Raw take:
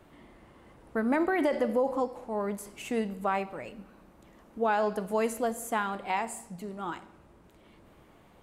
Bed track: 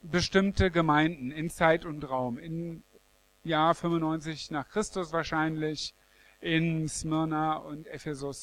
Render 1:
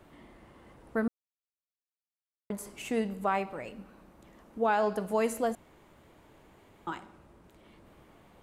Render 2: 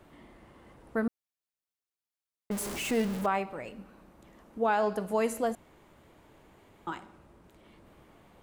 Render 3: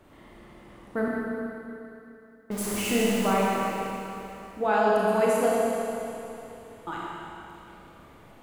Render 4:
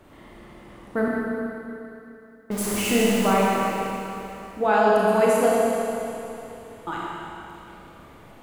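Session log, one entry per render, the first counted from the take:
1.08–2.5 mute; 5.55–6.87 room tone
2.51–3.26 zero-crossing step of -32.5 dBFS
Schroeder reverb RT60 3 s, combs from 26 ms, DRR -5 dB
gain +4 dB

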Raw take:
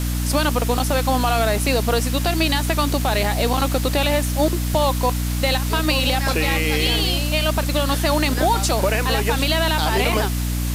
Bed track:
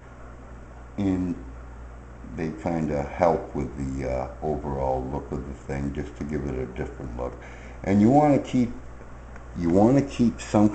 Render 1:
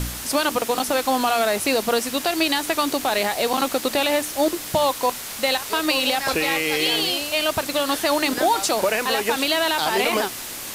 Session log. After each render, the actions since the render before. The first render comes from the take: de-hum 60 Hz, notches 5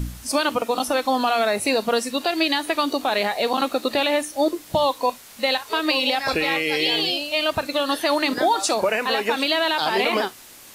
noise print and reduce 12 dB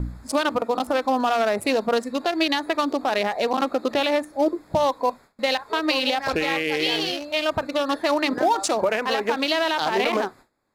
Wiener smoothing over 15 samples; gate with hold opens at -41 dBFS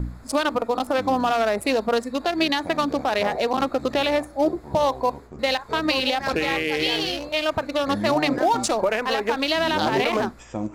add bed track -10 dB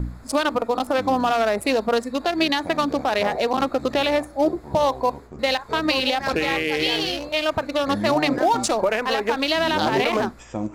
gain +1 dB

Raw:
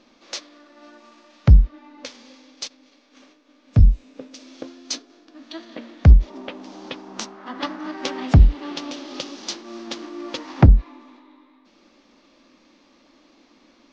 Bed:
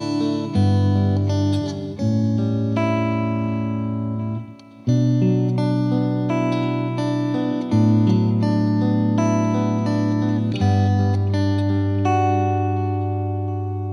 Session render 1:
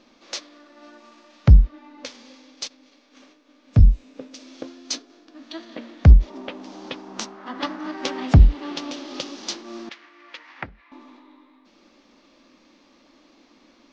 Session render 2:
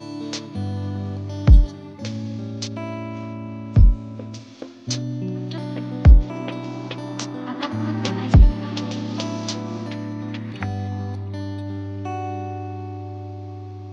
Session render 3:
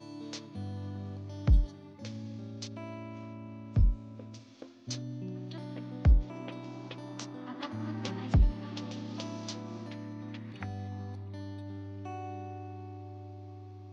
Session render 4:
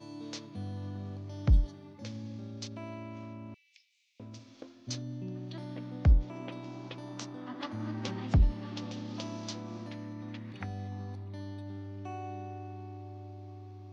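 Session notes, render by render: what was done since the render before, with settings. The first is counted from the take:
9.89–10.92 band-pass 2000 Hz, Q 2.2
add bed -10 dB
gain -12.5 dB
3.54–4.2 steep high-pass 2100 Hz 72 dB/oct

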